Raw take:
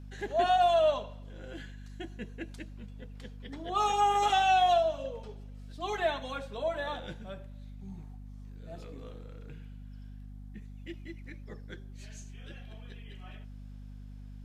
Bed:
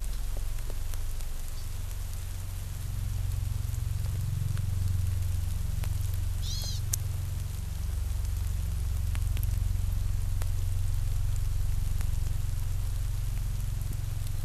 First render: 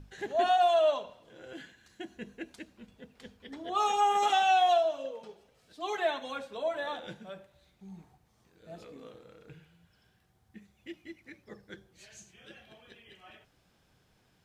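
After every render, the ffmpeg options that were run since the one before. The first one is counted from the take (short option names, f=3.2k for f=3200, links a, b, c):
-af "bandreject=f=50:t=h:w=6,bandreject=f=100:t=h:w=6,bandreject=f=150:t=h:w=6,bandreject=f=200:t=h:w=6,bandreject=f=250:t=h:w=6"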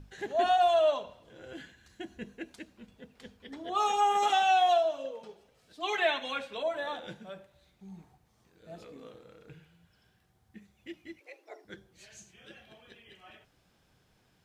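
-filter_complex "[0:a]asettb=1/sr,asplit=3[a][b][c];[a]atrim=end=0.434[d];[b]atrim=start=0.43:end=2.26,asetpts=PTS-STARTPTS,afade=t=in:d=0.004:c=qsin,afade=t=out:st=1.826:d=0.004:c=qsin,equalizer=f=62:w=0.81:g=9[e];[c]atrim=start=2.256[f];[d][e]acrossfade=d=0.004:c1=hsin:c2=qsin[g];[g][f]acrossfade=d=0.004:c1=qsin:c2=hsin,asettb=1/sr,asplit=3[h][i][j];[h]atrim=end=5.834[k];[i]atrim=start=5.83:end=6.63,asetpts=PTS-STARTPTS,afade=t=in:d=0.004:c=qsin,afade=t=out:st=0.796:d=0.004:c=qsin,equalizer=f=2.5k:w=1.1:g=10[l];[j]atrim=start=6.626[m];[k][l]acrossfade=d=0.004:c1=hsin:c2=qsin[n];[n][m]acrossfade=d=0.004:c1=qsin:c2=hsin,asettb=1/sr,asplit=3[o][p][q];[o]atrim=end=11.204[r];[p]atrim=start=11.2:end=11.65,asetpts=PTS-STARTPTS,afade=t=in:d=0.004:c=qsin,afade=t=out:st=0.446:d=0.004:c=qsin,afreqshift=230[s];[q]atrim=start=11.646[t];[r][s]acrossfade=d=0.004:c1=hsin:c2=qsin[u];[u][t]acrossfade=d=0.004:c1=qsin:c2=hsin"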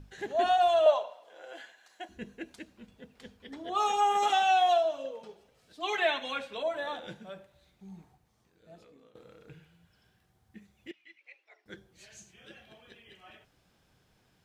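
-filter_complex "[0:a]asettb=1/sr,asplit=3[a][b][c];[a]atrim=end=0.864[d];[b]atrim=start=0.86:end=2.09,asetpts=PTS-STARTPTS,afade=t=in:d=0.004:c=qsin,afade=t=out:st=1.226:d=0.004:c=qsin,highpass=f=690:t=q:w=2.5[e];[c]atrim=start=2.086[f];[d][e]acrossfade=d=0.004:c1=hsin:c2=qsin[g];[g][f]acrossfade=d=0.004:c1=qsin:c2=hsin,asettb=1/sr,asplit=3[h][i][j];[h]atrim=end=10.914[k];[i]atrim=start=10.91:end=11.66,asetpts=PTS-STARTPTS,afade=t=in:d=0.004:c=qsin,afade=t=out:st=0.746:d=0.004:c=qsin,bandpass=f=2.5k:t=q:w=1.7[l];[j]atrim=start=11.656[m];[k][l]acrossfade=d=0.004:c1=hsin:c2=qsin[n];[n][m]acrossfade=d=0.004:c1=qsin:c2=hsin,asplit=2[o][p];[o]atrim=end=9.15,asetpts=PTS-STARTPTS,afade=t=out:st=7.9:d=1.25:silence=0.199526[q];[p]atrim=start=9.15,asetpts=PTS-STARTPTS,afade=t=in:d=0.004:c=hsin:silence=0.199526[r];[q][r]concat=n=2:v=0:a=1"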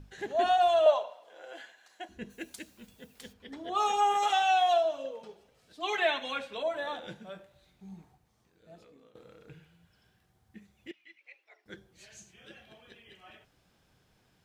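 -filter_complex "[0:a]asplit=3[a][b][c];[a]afade=t=out:st=2.29:d=0.02[d];[b]aemphasis=mode=production:type=75fm,afade=t=in:st=2.29:d=0.02,afade=t=out:st=3.32:d=0.02[e];[c]afade=t=in:st=3.32:d=0.02[f];[d][e][f]amix=inputs=3:normalize=0,asettb=1/sr,asplit=3[g][h][i];[g]atrim=end=4.144[j];[h]atrim=start=4.14:end=4.74,asetpts=PTS-STARTPTS,afade=t=in:d=0.004:c=qsin,afade=t=out:st=0.596:d=0.004:c=qsin,equalizer=f=260:w=1.5:g=-12[k];[i]atrim=start=4.736[l];[j][k]acrossfade=d=0.004:c1=hsin:c2=qsin[m];[m][l]acrossfade=d=0.004:c1=qsin:c2=hsin,asettb=1/sr,asplit=3[n][o][p];[n]atrim=end=7.324[q];[o]atrim=start=7.32:end=7.94,asetpts=PTS-STARTPTS,afade=t=in:d=0.004:c=qsin,afade=t=out:st=0.616:d=0.004:c=qsin,asplit=2[r][s];[s]adelay=22,volume=-7dB[t];[r][t]amix=inputs=2:normalize=0,atrim=end_sample=27342[u];[p]atrim=start=7.936[v];[q][u]acrossfade=d=0.004:c1=hsin:c2=qsin[w];[w][v]acrossfade=d=0.004:c1=qsin:c2=hsin"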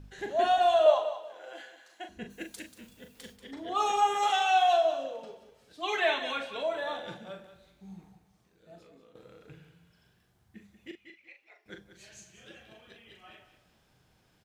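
-filter_complex "[0:a]asplit=2[a][b];[b]adelay=40,volume=-7dB[c];[a][c]amix=inputs=2:normalize=0,aecho=1:1:187|374|561:0.251|0.0653|0.017"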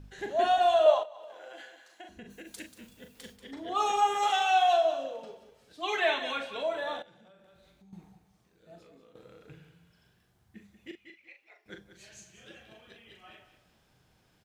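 -filter_complex "[0:a]asettb=1/sr,asplit=3[a][b][c];[a]atrim=end=1.034[d];[b]atrim=start=1.03:end=2.47,asetpts=PTS-STARTPTS,afade=t=in:d=0.004:c=qsin,afade=t=out:st=1.436:d=0.004:c=qsin,acompressor=threshold=-41dB:ratio=16:attack=3.2:release=140:knee=1:detection=peak[e];[c]atrim=start=2.466[f];[d][e]acrossfade=d=0.004:c1=hsin:c2=qsin[g];[g][f]acrossfade=d=0.004:c1=qsin:c2=hsin,asettb=1/sr,asplit=3[h][i][j];[h]atrim=end=3.964[k];[i]atrim=start=3.96:end=4.57,asetpts=PTS-STARTPTS,afade=t=in:d=0.004:c=qsin,afade=t=out:st=0.606:d=0.004:c=qsin,aeval=exprs='sgn(val(0))*max(abs(val(0))-0.00119,0)':c=same[l];[j]atrim=start=4.566[m];[k][l]acrossfade=d=0.004:c1=hsin:c2=qsin[n];[n][m]acrossfade=d=0.004:c1=qsin:c2=hsin,asettb=1/sr,asplit=3[o][p][q];[o]atrim=end=7.024[r];[p]atrim=start=7.02:end=7.93,asetpts=PTS-STARTPTS,afade=t=in:d=0.004:c=qsin,afade=t=out:st=0.906:d=0.004:c=qsin,acompressor=threshold=-56dB:ratio=6:attack=3.2:release=140:knee=1:detection=peak[s];[q]atrim=start=7.926[t];[r][s]acrossfade=d=0.004:c1=hsin:c2=qsin[u];[u][t]acrossfade=d=0.004:c1=qsin:c2=hsin"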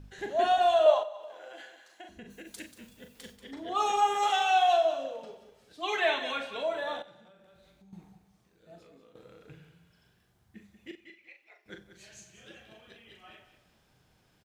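-af "aecho=1:1:91|182|273|364:0.0891|0.0508|0.029|0.0165"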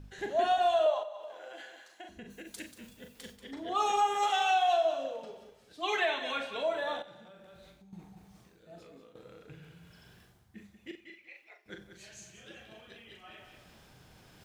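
-af "alimiter=limit=-19dB:level=0:latency=1:release=320,areverse,acompressor=mode=upward:threshold=-47dB:ratio=2.5,areverse"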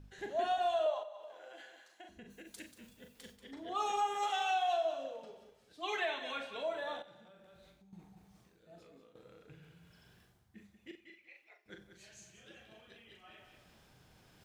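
-af "volume=-6dB"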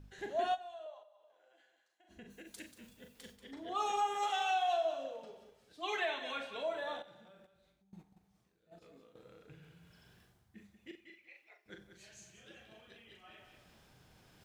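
-filter_complex "[0:a]asplit=3[a][b][c];[a]afade=t=out:st=7.45:d=0.02[d];[b]agate=range=-10dB:threshold=-57dB:ratio=16:release=100:detection=peak,afade=t=in:st=7.45:d=0.02,afade=t=out:st=8.81:d=0.02[e];[c]afade=t=in:st=8.81:d=0.02[f];[d][e][f]amix=inputs=3:normalize=0,asplit=3[g][h][i];[g]atrim=end=0.68,asetpts=PTS-STARTPTS,afade=t=out:st=0.54:d=0.14:c=exp:silence=0.158489[j];[h]atrim=start=0.68:end=1.97,asetpts=PTS-STARTPTS,volume=-16dB[k];[i]atrim=start=1.97,asetpts=PTS-STARTPTS,afade=t=in:d=0.14:c=exp:silence=0.158489[l];[j][k][l]concat=n=3:v=0:a=1"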